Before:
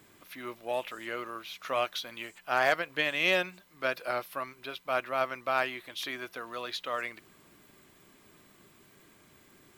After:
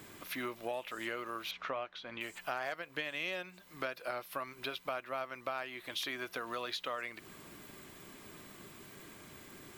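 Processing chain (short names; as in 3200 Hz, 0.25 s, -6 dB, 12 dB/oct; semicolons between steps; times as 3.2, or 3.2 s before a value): compressor 8:1, threshold -42 dBFS, peak gain reduction 20.5 dB; 1.51–2.21 Bessel low-pass 2200 Hz, order 2; gain +6.5 dB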